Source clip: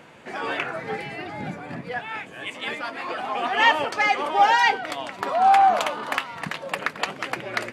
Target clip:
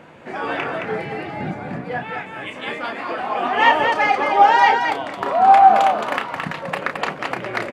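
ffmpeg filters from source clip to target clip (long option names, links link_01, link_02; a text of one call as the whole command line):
ffmpeg -i in.wav -filter_complex "[0:a]highshelf=frequency=2600:gain=-10.5,asplit=2[link_01][link_02];[link_02]aecho=0:1:32.07|218.7:0.447|0.562[link_03];[link_01][link_03]amix=inputs=2:normalize=0,volume=4.5dB" out.wav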